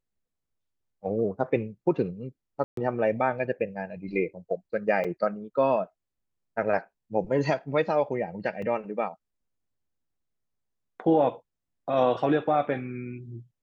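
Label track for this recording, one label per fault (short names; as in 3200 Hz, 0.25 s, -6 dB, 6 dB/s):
2.640000	2.770000	gap 0.133 s
5.040000	5.050000	gap 5.2 ms
8.620000	8.620000	gap 3.3 ms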